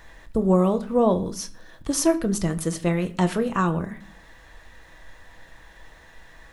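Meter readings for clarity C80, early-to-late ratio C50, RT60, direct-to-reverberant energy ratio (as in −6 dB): 20.0 dB, 17.0 dB, 0.50 s, 7.5 dB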